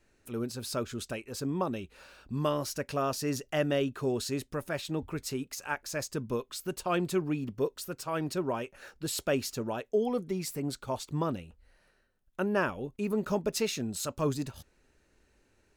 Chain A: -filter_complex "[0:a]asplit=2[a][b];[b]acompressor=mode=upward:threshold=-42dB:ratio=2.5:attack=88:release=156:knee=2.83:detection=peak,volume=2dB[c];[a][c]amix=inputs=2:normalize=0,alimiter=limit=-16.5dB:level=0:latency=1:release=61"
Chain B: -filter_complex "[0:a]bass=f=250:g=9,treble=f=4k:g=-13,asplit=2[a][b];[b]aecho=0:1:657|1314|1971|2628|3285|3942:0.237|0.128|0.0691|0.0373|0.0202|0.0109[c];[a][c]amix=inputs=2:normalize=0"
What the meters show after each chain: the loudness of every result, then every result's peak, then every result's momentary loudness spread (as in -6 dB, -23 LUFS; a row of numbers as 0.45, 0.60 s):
-28.0, -30.5 LUFS; -16.5, -13.5 dBFS; 5, 13 LU